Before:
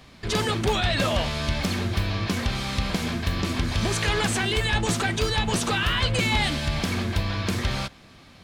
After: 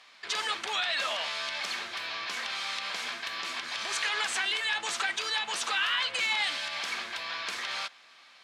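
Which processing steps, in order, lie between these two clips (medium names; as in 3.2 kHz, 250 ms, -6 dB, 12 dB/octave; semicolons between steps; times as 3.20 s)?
distance through air 51 m; peak limiter -16 dBFS, peak gain reduction 3.5 dB; high-pass 1.1 kHz 12 dB/octave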